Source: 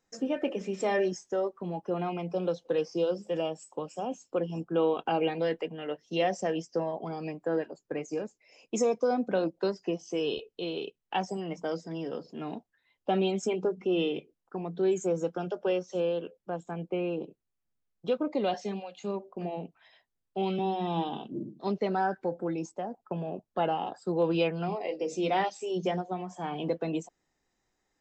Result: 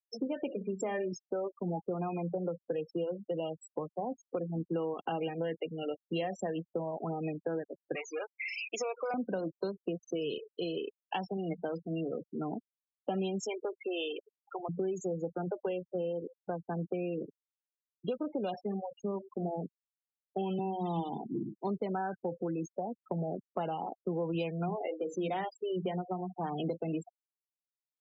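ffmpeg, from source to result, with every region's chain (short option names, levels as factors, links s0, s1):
-filter_complex "[0:a]asettb=1/sr,asplit=3[s0][s1][s2];[s0]atrim=end=7.954[s3];[s1]atrim=start=7.95:end=9.14,asetpts=PTS-STARTPTS,afade=t=in:d=0.004:c=qsin,afade=t=out:st=1.186:d=0.004:c=qsin,aeval=exprs='val(0)+0.5*0.015*sgn(val(0))':c=same,highpass=540,lowpass=3200,tiltshelf=f=830:g=-7[s4];[s2]atrim=start=9.136[s5];[s3][s4]acrossfade=d=0.004:c1=hsin:c2=qsin[s6];[s6][s5]acrossfade=d=0.004:c1=qsin:c2=hsin,asettb=1/sr,asplit=3[s7][s8][s9];[s7]atrim=end=13.404[s10];[s8]atrim=start=13.4:end=14.69,asetpts=PTS-STARTPTS,afade=t=in:d=0.004:c=qsin,afade=t=out:st=1.286:d=0.004:c=qsin,aeval=exprs='val(0)+0.5*0.0075*sgn(val(0))':c=same,highpass=590[s11];[s9]atrim=start=14.686[s12];[s10][s11]acrossfade=d=0.004:c1=hsin:c2=qsin[s13];[s13][s12]acrossfade=d=0.004:c1=qsin:c2=hsin,afftfilt=real='re*gte(hypot(re,im),0.0224)':imag='im*gte(hypot(re,im),0.0224)':win_size=1024:overlap=0.75,acrossover=split=130[s14][s15];[s15]acompressor=threshold=0.0158:ratio=6[s16];[s14][s16]amix=inputs=2:normalize=0,volume=1.5"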